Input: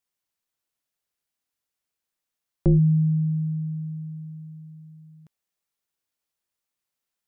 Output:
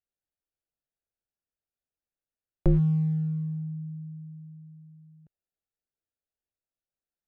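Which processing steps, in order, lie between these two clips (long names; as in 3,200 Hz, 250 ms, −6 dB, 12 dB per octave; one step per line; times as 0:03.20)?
adaptive Wiener filter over 41 samples
parametric band 210 Hz −9.5 dB 2.6 octaves
level +4 dB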